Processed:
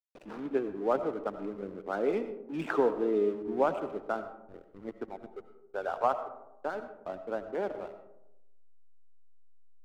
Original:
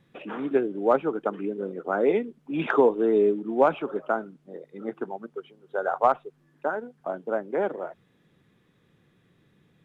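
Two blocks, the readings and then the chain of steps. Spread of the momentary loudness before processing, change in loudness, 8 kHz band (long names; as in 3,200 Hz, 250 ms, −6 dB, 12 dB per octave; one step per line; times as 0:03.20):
16 LU, −6.5 dB, can't be measured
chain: slack as between gear wheels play −34 dBFS
comb and all-pass reverb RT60 0.89 s, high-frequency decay 0.35×, pre-delay 50 ms, DRR 10.5 dB
level −7 dB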